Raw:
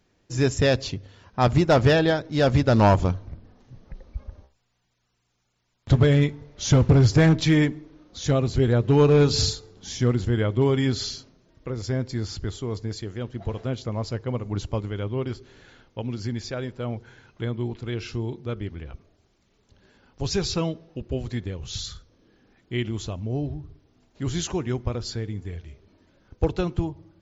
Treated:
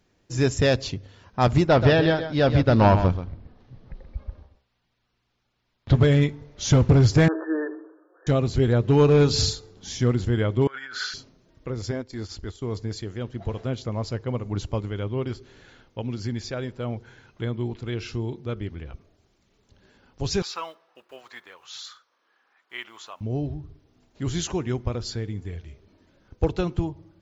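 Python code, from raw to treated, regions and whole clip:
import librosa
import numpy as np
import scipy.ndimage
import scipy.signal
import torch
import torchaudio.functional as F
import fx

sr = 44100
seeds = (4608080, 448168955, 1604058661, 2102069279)

y = fx.chain(x, sr, fx.lowpass(hz=4900.0, slope=24),
    fx.echo_single(ms=130, db=-10.0), at=(1.67, 5.95))
y = fx.chain(y, sr, fx.brickwall_bandpass(low_hz=310.0, high_hz=1800.0),
    fx.peak_eq(hz=810.0, db=-5.5, octaves=0.61),
    fx.sustainer(db_per_s=81.0), at=(7.28, 8.27))
y = fx.chain(y, sr, fx.tilt_eq(slope=-4.0),
    fx.over_compress(threshold_db=-17.0, ratio=-0.5),
    fx.highpass_res(hz=1500.0, q=11.0), at=(10.67, 11.14))
y = fx.chain(y, sr, fx.peak_eq(hz=140.0, db=-14.0, octaves=0.53),
    fx.transient(attack_db=-5, sustain_db=-10), at=(11.91, 12.62))
y = fx.chain(y, sr, fx.block_float(bits=7),
    fx.highpass_res(hz=1100.0, q=1.9),
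    fx.high_shelf(hz=3500.0, db=-9.5), at=(20.42, 23.21))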